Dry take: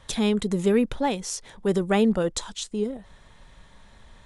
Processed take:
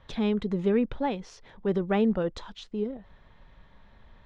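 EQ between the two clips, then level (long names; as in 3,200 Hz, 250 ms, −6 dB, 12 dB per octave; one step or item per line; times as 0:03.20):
high-frequency loss of the air 260 metres
−3.0 dB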